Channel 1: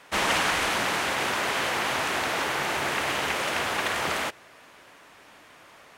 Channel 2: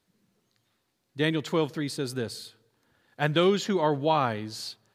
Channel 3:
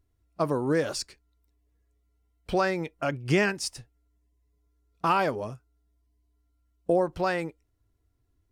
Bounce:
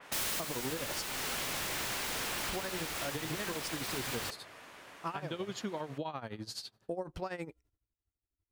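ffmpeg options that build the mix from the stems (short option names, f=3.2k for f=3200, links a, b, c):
-filter_complex "[0:a]aeval=exprs='(mod(23.7*val(0)+1,2)-1)/23.7':c=same,adynamicequalizer=threshold=0.00447:dfrequency=3700:dqfactor=0.7:tfrequency=3700:tqfactor=0.7:attack=5:release=100:ratio=0.375:range=3:mode=cutabove:tftype=highshelf,volume=-1dB[a];[1:a]adelay=1950,volume=-2dB[b];[2:a]agate=range=-33dB:threshold=-60dB:ratio=3:detection=peak,alimiter=limit=-17.5dB:level=0:latency=1:release=214,volume=-1.5dB[c];[b][c]amix=inputs=2:normalize=0,tremolo=f=12:d=0.82,acompressor=threshold=-30dB:ratio=6,volume=0dB[d];[a][d]amix=inputs=2:normalize=0,alimiter=level_in=2.5dB:limit=-24dB:level=0:latency=1:release=244,volume=-2.5dB"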